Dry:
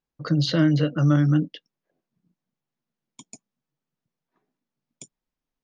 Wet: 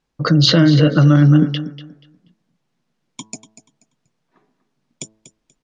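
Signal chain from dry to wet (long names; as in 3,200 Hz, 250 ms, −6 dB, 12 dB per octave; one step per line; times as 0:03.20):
low-pass filter 7,100 Hz 12 dB per octave
hum removal 108.9 Hz, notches 17
in parallel at +2 dB: compressor whose output falls as the input rises −25 dBFS, ratio −1
on the sum: repeating echo 241 ms, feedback 23%, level −14 dB
level +4 dB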